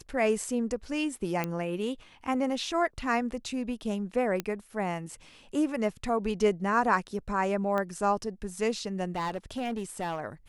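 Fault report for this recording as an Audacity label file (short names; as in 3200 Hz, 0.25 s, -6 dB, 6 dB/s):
1.440000	1.440000	pop -16 dBFS
4.400000	4.400000	pop -16 dBFS
7.780000	7.780000	pop -19 dBFS
9.150000	10.200000	clipped -27.5 dBFS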